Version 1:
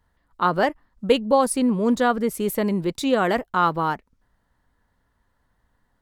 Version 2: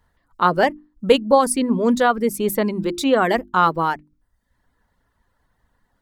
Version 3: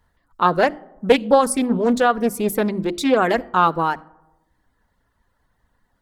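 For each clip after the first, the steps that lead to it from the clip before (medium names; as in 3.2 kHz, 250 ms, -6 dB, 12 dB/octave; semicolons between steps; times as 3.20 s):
reverb removal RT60 0.69 s; hum notches 50/100/150/200/250/300/350 Hz; trim +4 dB
on a send at -23 dB: reverberation RT60 1.1 s, pre-delay 15 ms; on the sum: loudspeaker Doppler distortion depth 0.35 ms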